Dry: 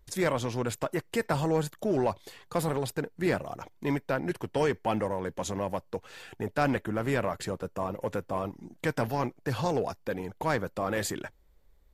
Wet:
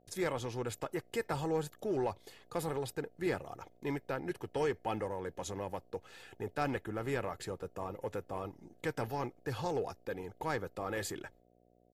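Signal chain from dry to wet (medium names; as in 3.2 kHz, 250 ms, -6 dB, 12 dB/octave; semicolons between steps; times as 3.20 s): comb 2.4 ms, depth 36%; gate with hold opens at -47 dBFS; mains buzz 60 Hz, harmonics 12, -61 dBFS 0 dB/octave; trim -7.5 dB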